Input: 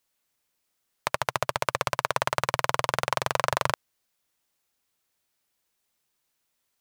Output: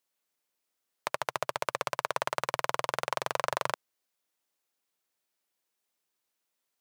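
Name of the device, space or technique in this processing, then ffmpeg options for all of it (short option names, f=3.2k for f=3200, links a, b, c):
filter by subtraction: -filter_complex "[0:a]asplit=2[a][b];[b]lowpass=370,volume=-1[c];[a][c]amix=inputs=2:normalize=0,volume=-6dB"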